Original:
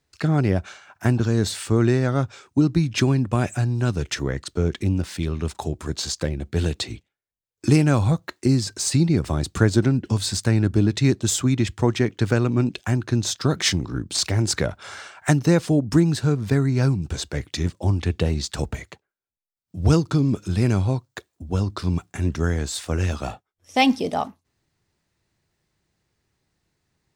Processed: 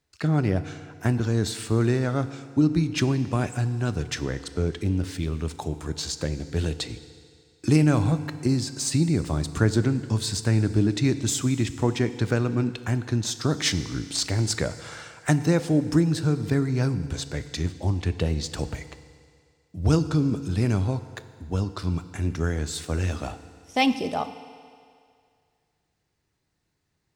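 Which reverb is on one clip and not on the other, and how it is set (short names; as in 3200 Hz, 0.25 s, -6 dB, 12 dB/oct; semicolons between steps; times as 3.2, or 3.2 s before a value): FDN reverb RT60 2.2 s, low-frequency decay 0.8×, high-frequency decay 1×, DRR 11.5 dB; gain -3.5 dB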